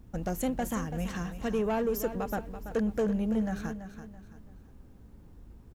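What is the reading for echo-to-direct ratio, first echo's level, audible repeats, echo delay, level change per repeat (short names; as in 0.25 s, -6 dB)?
-10.5 dB, -11.0 dB, 3, 0.333 s, -9.5 dB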